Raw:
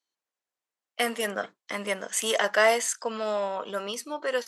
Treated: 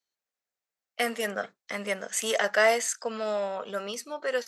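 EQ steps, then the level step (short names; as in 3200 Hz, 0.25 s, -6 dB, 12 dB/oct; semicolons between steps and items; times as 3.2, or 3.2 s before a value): thirty-one-band EQ 315 Hz -8 dB, 1000 Hz -7 dB, 3150 Hz -4 dB, 10000 Hz -6 dB; 0.0 dB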